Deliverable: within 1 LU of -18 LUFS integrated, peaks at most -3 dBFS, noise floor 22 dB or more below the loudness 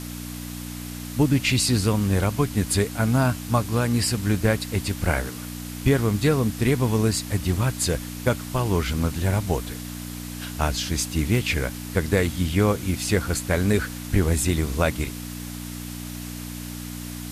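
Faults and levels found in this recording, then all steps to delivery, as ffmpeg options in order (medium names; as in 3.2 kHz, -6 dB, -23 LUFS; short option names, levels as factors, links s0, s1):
hum 60 Hz; highest harmonic 300 Hz; hum level -33 dBFS; noise floor -35 dBFS; noise floor target -47 dBFS; loudness -24.5 LUFS; peak level -5.5 dBFS; loudness target -18.0 LUFS
-> -af "bandreject=f=60:t=h:w=4,bandreject=f=120:t=h:w=4,bandreject=f=180:t=h:w=4,bandreject=f=240:t=h:w=4,bandreject=f=300:t=h:w=4"
-af "afftdn=nr=12:nf=-35"
-af "volume=2.11,alimiter=limit=0.708:level=0:latency=1"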